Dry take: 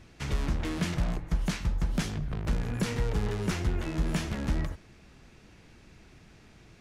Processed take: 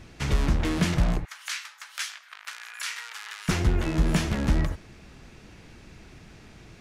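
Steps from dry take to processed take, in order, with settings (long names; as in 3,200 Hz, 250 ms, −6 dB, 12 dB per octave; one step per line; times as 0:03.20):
0:01.25–0:03.49: high-pass filter 1,300 Hz 24 dB per octave
level +6 dB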